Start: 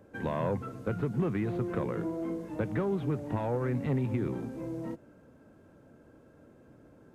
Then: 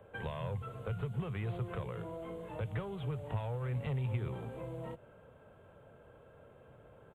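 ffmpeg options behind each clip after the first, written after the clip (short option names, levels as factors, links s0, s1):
-filter_complex "[0:a]firequalizer=gain_entry='entry(120,0);entry(290,-15);entry(430,1);entry(640,2);entry(1200,3);entry(1700,-1);entry(3200,6);entry(5200,-23);entry(7600,-6)':delay=0.05:min_phase=1,acrossover=split=140|3000[s0][s1][s2];[s1]acompressor=threshold=0.00794:ratio=6[s3];[s0][s3][s2]amix=inputs=3:normalize=0,volume=1.12"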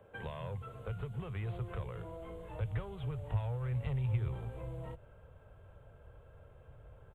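-af "asubboost=boost=10:cutoff=71,volume=0.75"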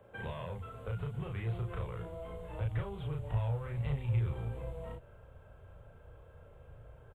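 -filter_complex "[0:a]asplit=2[s0][s1];[s1]adelay=35,volume=0.75[s2];[s0][s2]amix=inputs=2:normalize=0"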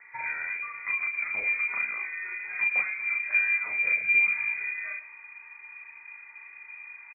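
-af "aecho=1:1:106:0.168,lowpass=f=2100:t=q:w=0.5098,lowpass=f=2100:t=q:w=0.6013,lowpass=f=2100:t=q:w=0.9,lowpass=f=2100:t=q:w=2.563,afreqshift=-2500,volume=2.37"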